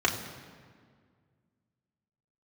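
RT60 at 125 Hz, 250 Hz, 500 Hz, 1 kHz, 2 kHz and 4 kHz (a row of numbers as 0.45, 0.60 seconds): 2.6, 2.4, 2.0, 1.8, 1.6, 1.3 seconds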